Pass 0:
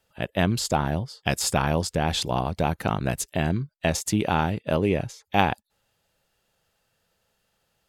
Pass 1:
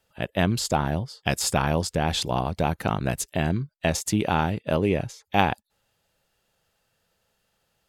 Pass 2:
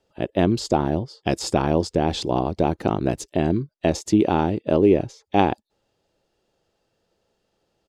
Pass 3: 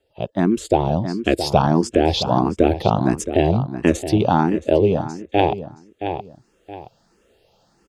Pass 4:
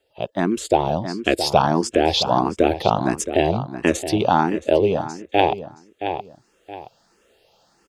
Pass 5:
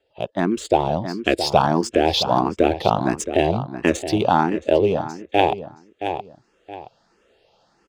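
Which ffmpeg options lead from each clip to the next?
ffmpeg -i in.wav -af anull out.wav
ffmpeg -i in.wav -af "firequalizer=gain_entry='entry(160,0);entry(340,12);entry(480,5);entry(1500,-5);entry(5100,-1);entry(12000,-15)':delay=0.05:min_phase=1" out.wav
ffmpeg -i in.wav -filter_complex "[0:a]asplit=2[link_01][link_02];[link_02]adelay=671,lowpass=frequency=3500:poles=1,volume=-11dB,asplit=2[link_03][link_04];[link_04]adelay=671,lowpass=frequency=3500:poles=1,volume=0.15[link_05];[link_01][link_03][link_05]amix=inputs=3:normalize=0,dynaudnorm=framelen=130:gausssize=11:maxgain=11.5dB,asplit=2[link_06][link_07];[link_07]afreqshift=1.5[link_08];[link_06][link_08]amix=inputs=2:normalize=1,volume=3dB" out.wav
ffmpeg -i in.wav -af "lowshelf=frequency=350:gain=-10.5,volume=3dB" out.wav
ffmpeg -i in.wav -af "adynamicsmooth=sensitivity=5.5:basefreq=5700" out.wav

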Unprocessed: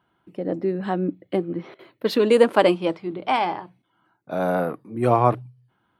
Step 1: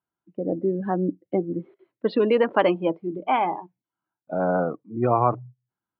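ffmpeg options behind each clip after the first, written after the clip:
ffmpeg -i in.wav -filter_complex "[0:a]afftdn=noise_reduction=22:noise_floor=-30,lowpass=2700,acrossover=split=840[link_01][link_02];[link_01]alimiter=limit=-12.5dB:level=0:latency=1:release=167[link_03];[link_03][link_02]amix=inputs=2:normalize=0" out.wav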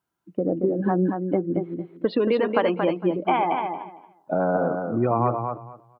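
ffmpeg -i in.wav -af "acompressor=threshold=-29dB:ratio=3,aecho=1:1:228|456|684:0.531|0.101|0.0192,volume=7.5dB" out.wav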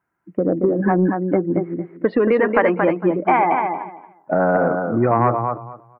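ffmpeg -i in.wav -af "asoftclip=type=tanh:threshold=-7.5dB,acontrast=32,highshelf=frequency=2600:width_type=q:width=3:gain=-10" out.wav

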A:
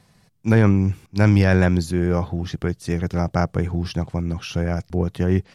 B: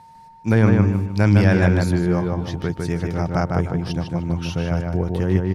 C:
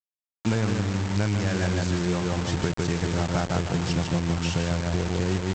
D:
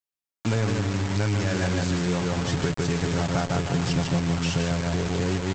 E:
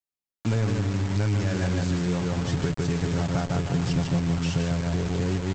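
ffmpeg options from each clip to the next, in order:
ffmpeg -i in.wav -filter_complex "[0:a]aeval=exprs='val(0)+0.00708*sin(2*PI*910*n/s)':channel_layout=same,asplit=2[link_01][link_02];[link_02]adelay=153,lowpass=frequency=3000:poles=1,volume=-3dB,asplit=2[link_03][link_04];[link_04]adelay=153,lowpass=frequency=3000:poles=1,volume=0.34,asplit=2[link_05][link_06];[link_06]adelay=153,lowpass=frequency=3000:poles=1,volume=0.34,asplit=2[link_07][link_08];[link_08]adelay=153,lowpass=frequency=3000:poles=1,volume=0.34[link_09];[link_01][link_03][link_05][link_07][link_09]amix=inputs=5:normalize=0,volume=-1dB" out.wav
ffmpeg -i in.wav -af "acompressor=threshold=-25dB:ratio=16,aresample=16000,acrusher=bits=5:mix=0:aa=0.000001,aresample=44100,volume=4dB" out.wav
ffmpeg -i in.wav -filter_complex "[0:a]aecho=1:1:7.2:0.41,asplit=2[link_01][link_02];[link_02]alimiter=limit=-18dB:level=0:latency=1,volume=-3dB[link_03];[link_01][link_03]amix=inputs=2:normalize=0,volume=-3.5dB" out.wav
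ffmpeg -i in.wav -af "lowshelf=frequency=310:gain=6,volume=-4.5dB" out.wav

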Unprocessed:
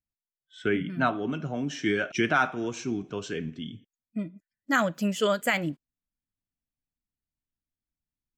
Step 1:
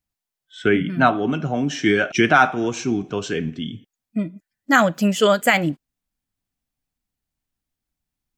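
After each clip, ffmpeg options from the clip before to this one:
ffmpeg -i in.wav -af "equalizer=frequency=770:width=7.7:gain=5,volume=8.5dB" out.wav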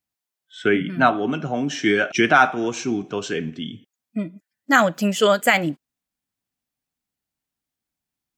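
ffmpeg -i in.wav -af "highpass=frequency=190:poles=1" out.wav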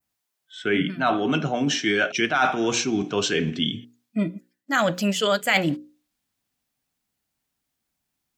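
ffmpeg -i in.wav -af "areverse,acompressor=threshold=-25dB:ratio=8,areverse,adynamicequalizer=threshold=0.00447:dfrequency=3900:dqfactor=0.94:tfrequency=3900:tqfactor=0.94:attack=5:release=100:ratio=0.375:range=3:mode=boostabove:tftype=bell,bandreject=frequency=60:width_type=h:width=6,bandreject=frequency=120:width_type=h:width=6,bandreject=frequency=180:width_type=h:width=6,bandreject=frequency=240:width_type=h:width=6,bandreject=frequency=300:width_type=h:width=6,bandreject=frequency=360:width_type=h:width=6,bandreject=frequency=420:width_type=h:width=6,bandreject=frequency=480:width_type=h:width=6,bandreject=frequency=540:width_type=h:width=6,volume=6dB" out.wav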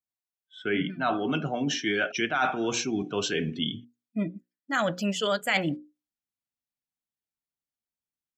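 ffmpeg -i in.wav -af "afftdn=noise_reduction=14:noise_floor=-38,volume=-5dB" out.wav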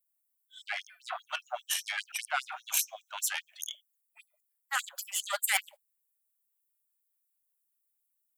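ffmpeg -i in.wav -af "aeval=exprs='0.266*(cos(1*acos(clip(val(0)/0.266,-1,1)))-cos(1*PI/2))+0.0596*(cos(4*acos(clip(val(0)/0.266,-1,1)))-cos(4*PI/2))':channel_layout=same,aexciter=amount=8.5:drive=3.8:freq=7800,afftfilt=real='re*gte(b*sr/1024,550*pow(5400/550,0.5+0.5*sin(2*PI*5*pts/sr)))':imag='im*gte(b*sr/1024,550*pow(5400/550,0.5+0.5*sin(2*PI*5*pts/sr)))':win_size=1024:overlap=0.75,volume=-3dB" out.wav

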